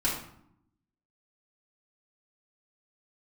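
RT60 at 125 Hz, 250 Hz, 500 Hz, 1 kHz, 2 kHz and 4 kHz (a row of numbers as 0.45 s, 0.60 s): 1.1 s, 1.1 s, 0.70 s, 0.70 s, 0.55 s, 0.45 s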